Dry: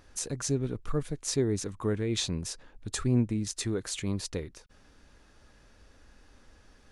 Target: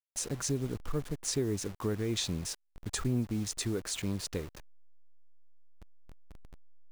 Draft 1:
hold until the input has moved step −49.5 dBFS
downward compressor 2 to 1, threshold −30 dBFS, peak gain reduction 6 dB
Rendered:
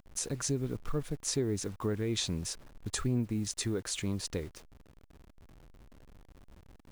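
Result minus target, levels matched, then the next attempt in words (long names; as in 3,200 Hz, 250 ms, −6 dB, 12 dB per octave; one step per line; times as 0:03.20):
hold until the input has moved: distortion −9 dB
hold until the input has moved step −41.5 dBFS
downward compressor 2 to 1, threshold −30 dBFS, peak gain reduction 6 dB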